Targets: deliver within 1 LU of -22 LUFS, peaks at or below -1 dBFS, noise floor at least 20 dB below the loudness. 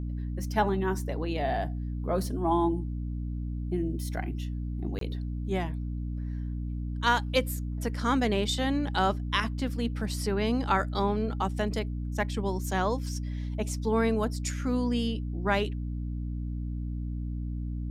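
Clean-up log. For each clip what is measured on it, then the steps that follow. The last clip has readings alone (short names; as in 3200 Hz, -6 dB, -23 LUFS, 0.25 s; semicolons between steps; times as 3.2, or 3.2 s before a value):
dropouts 1; longest dropout 23 ms; hum 60 Hz; harmonics up to 300 Hz; hum level -30 dBFS; loudness -30.5 LUFS; peak -10.5 dBFS; loudness target -22.0 LUFS
-> interpolate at 4.99, 23 ms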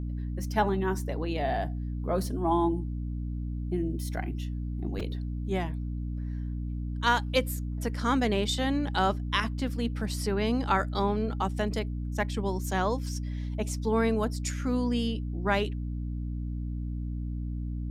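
dropouts 0; hum 60 Hz; harmonics up to 300 Hz; hum level -30 dBFS
-> de-hum 60 Hz, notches 5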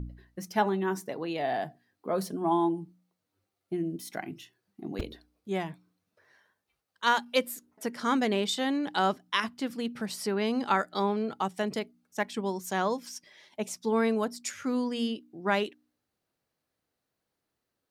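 hum none; loudness -30.5 LUFS; peak -12.0 dBFS; loudness target -22.0 LUFS
-> gain +8.5 dB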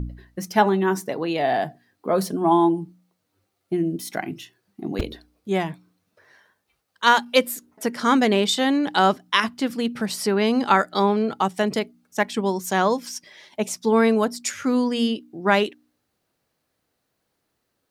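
loudness -22.0 LUFS; peak -3.5 dBFS; noise floor -76 dBFS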